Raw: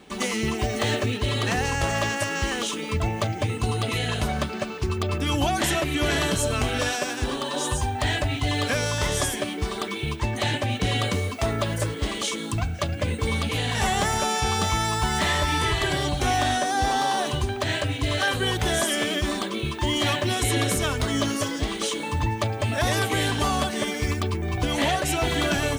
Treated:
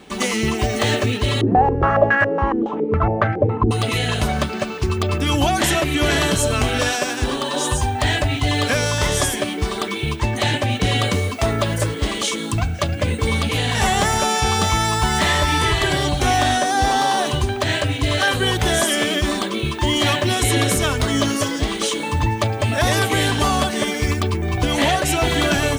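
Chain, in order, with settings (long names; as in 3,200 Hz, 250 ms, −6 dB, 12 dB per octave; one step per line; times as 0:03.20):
0:01.41–0:03.71: low-pass on a step sequencer 7.2 Hz 320–1,600 Hz
level +5.5 dB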